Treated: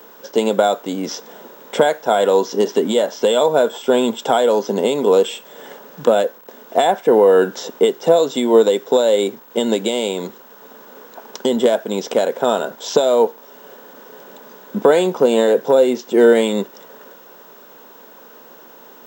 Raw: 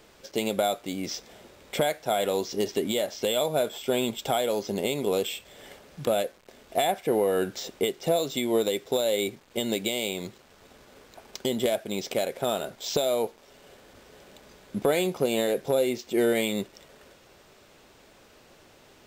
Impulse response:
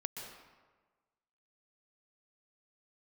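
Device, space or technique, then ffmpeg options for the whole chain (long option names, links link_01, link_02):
old television with a line whistle: -af "highpass=frequency=170:width=0.5412,highpass=frequency=170:width=1.3066,equalizer=frequency=240:width_type=q:width=4:gain=4,equalizer=frequency=470:width_type=q:width=4:gain=7,equalizer=frequency=960:width_type=q:width=4:gain=10,equalizer=frequency=1500:width_type=q:width=4:gain=6,equalizer=frequency=2300:width_type=q:width=4:gain=-8,equalizer=frequency=4400:width_type=q:width=4:gain=-6,lowpass=frequency=7800:width=0.5412,lowpass=frequency=7800:width=1.3066,aeval=exprs='val(0)+0.00282*sin(2*PI*15734*n/s)':channel_layout=same,volume=7.5dB"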